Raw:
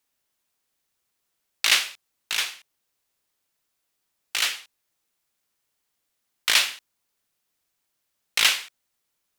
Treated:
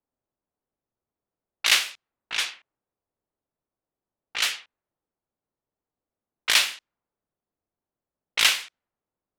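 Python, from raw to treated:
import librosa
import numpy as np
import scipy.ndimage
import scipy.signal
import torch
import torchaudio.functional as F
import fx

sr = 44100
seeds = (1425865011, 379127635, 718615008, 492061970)

y = fx.env_lowpass(x, sr, base_hz=720.0, full_db=-20.0)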